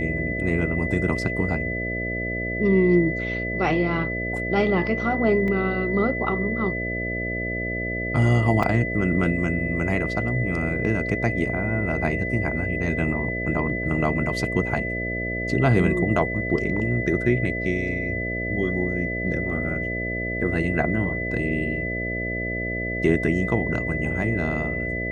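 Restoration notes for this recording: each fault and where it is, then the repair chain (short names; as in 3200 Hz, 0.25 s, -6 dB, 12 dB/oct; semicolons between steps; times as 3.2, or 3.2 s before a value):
buzz 60 Hz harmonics 11 -30 dBFS
tone 2000 Hz -28 dBFS
5.48 gap 2.3 ms
8.63 gap 3.7 ms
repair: de-hum 60 Hz, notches 11; notch 2000 Hz, Q 30; interpolate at 5.48, 2.3 ms; interpolate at 8.63, 3.7 ms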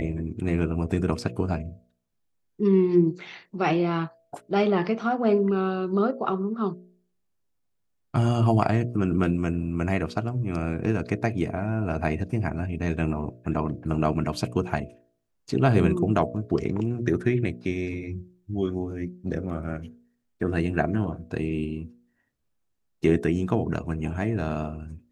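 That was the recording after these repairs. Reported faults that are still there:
none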